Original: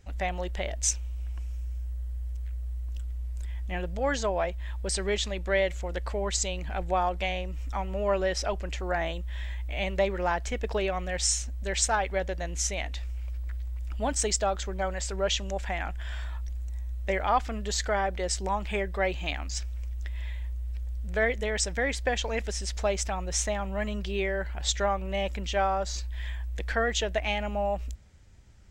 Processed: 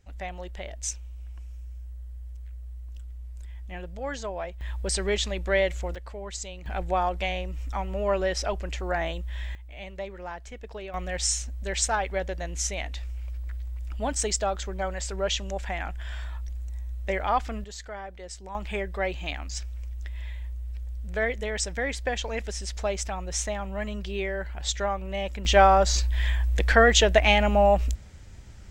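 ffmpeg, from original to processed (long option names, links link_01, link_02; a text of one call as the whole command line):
ffmpeg -i in.wav -af "asetnsamples=nb_out_samples=441:pad=0,asendcmd='4.61 volume volume 2dB;5.95 volume volume -7.5dB;6.66 volume volume 1dB;9.55 volume volume -10dB;10.94 volume volume 0dB;17.64 volume volume -11dB;18.55 volume volume -1dB;25.45 volume volume 9.5dB',volume=-5.5dB" out.wav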